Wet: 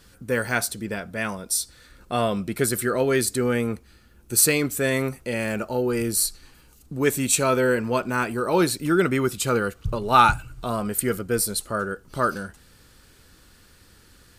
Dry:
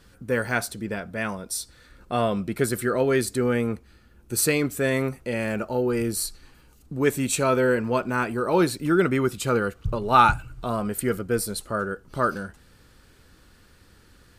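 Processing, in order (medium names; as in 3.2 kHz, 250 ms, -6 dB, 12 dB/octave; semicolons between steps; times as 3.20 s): treble shelf 3.5 kHz +7 dB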